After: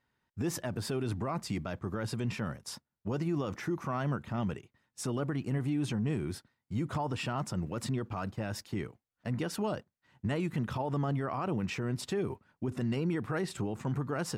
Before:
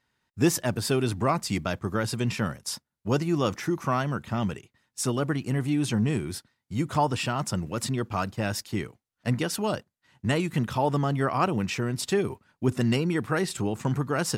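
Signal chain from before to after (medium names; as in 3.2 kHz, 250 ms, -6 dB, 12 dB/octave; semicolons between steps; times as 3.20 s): treble shelf 2.9 kHz -9.5 dB; peak limiter -22.5 dBFS, peak gain reduction 11 dB; trim -2 dB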